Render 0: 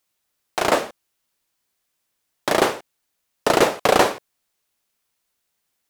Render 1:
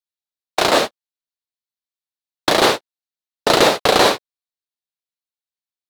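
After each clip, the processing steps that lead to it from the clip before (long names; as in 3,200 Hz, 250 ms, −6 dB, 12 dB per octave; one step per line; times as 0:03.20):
noise gate −25 dBFS, range −34 dB
parametric band 4,000 Hz +9 dB 0.62 octaves
boost into a limiter +11 dB
level −1 dB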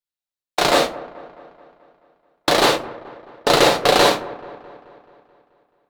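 delay with a low-pass on its return 216 ms, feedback 58%, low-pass 1,500 Hz, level −17 dB
on a send at −6 dB: convolution reverb RT60 0.45 s, pre-delay 6 ms
on the sum: level −2 dB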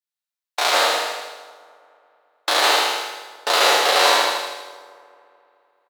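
peak hold with a decay on every bin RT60 1.10 s
high-pass filter 760 Hz 12 dB per octave
on a send: repeating echo 79 ms, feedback 57%, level −3.5 dB
on the sum: level −3.5 dB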